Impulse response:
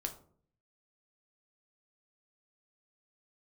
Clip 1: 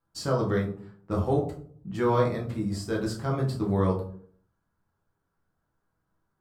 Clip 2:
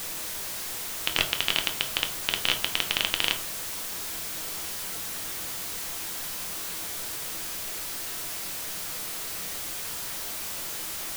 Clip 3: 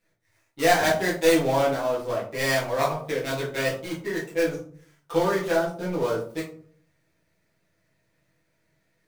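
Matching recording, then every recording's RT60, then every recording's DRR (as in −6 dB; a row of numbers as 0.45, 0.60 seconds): 2; 0.55, 0.55, 0.55 seconds; −2.5, 4.0, −7.5 decibels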